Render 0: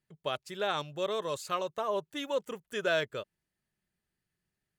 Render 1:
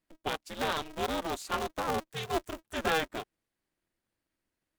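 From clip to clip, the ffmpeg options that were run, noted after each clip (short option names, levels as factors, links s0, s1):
-af "aeval=exprs='val(0)*sgn(sin(2*PI*160*n/s))':c=same"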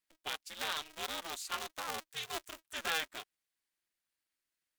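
-af "tiltshelf=f=970:g=-9.5,volume=0.376"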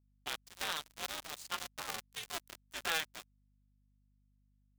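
-af "aeval=exprs='sgn(val(0))*max(abs(val(0))-0.00708,0)':c=same,aeval=exprs='val(0)+0.000224*(sin(2*PI*50*n/s)+sin(2*PI*2*50*n/s)/2+sin(2*PI*3*50*n/s)/3+sin(2*PI*4*50*n/s)/4+sin(2*PI*5*50*n/s)/5)':c=same,volume=1.26"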